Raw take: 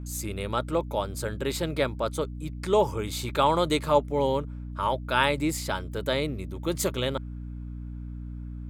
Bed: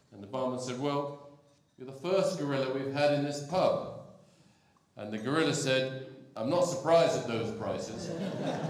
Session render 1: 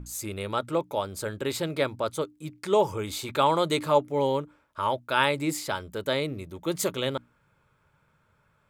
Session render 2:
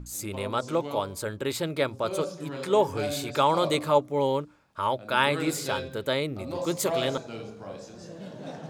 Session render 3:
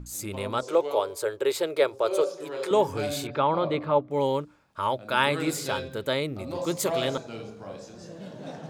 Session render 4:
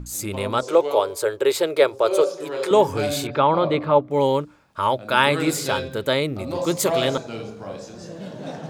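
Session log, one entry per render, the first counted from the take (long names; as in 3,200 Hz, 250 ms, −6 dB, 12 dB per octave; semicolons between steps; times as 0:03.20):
mains-hum notches 60/120/180/240/300 Hz
mix in bed −5.5 dB
0:00.63–0:02.71: low shelf with overshoot 300 Hz −11 dB, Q 3; 0:03.27–0:04.11: high-frequency loss of the air 370 metres
level +6 dB; brickwall limiter −2 dBFS, peak gain reduction 1 dB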